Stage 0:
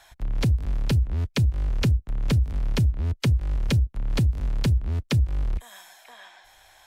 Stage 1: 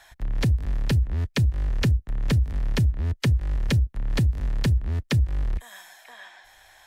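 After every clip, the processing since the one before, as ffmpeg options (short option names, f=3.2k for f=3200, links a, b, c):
-af "equalizer=f=1.8k:w=5.8:g=6.5"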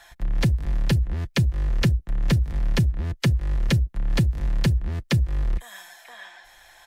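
-af "aecho=1:1:5.8:0.39,volume=1.5dB"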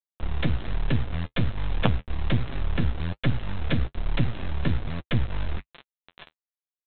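-af "aresample=8000,acrusher=bits=3:dc=4:mix=0:aa=0.000001,aresample=44100,flanger=delay=7.1:depth=5.7:regen=-31:speed=1.2:shape=sinusoidal,volume=4dB"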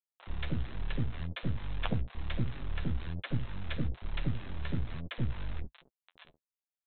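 -filter_complex "[0:a]acrossover=split=630[a][b];[a]adelay=70[c];[c][b]amix=inputs=2:normalize=0,volume=-8.5dB"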